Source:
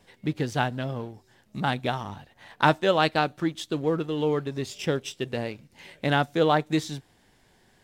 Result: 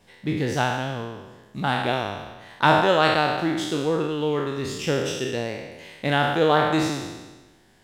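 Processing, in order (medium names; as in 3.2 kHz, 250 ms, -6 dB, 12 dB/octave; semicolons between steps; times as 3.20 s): spectral sustain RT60 1.24 s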